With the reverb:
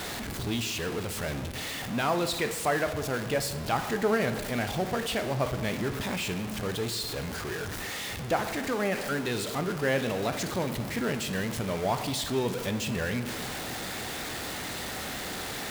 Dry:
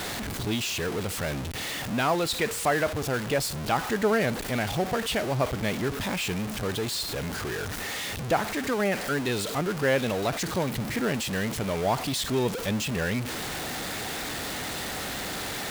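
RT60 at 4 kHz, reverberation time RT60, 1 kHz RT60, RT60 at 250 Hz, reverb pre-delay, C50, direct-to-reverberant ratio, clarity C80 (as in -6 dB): 0.90 s, 1.5 s, 1.4 s, 1.7 s, 12 ms, 11.0 dB, 8.5 dB, 12.5 dB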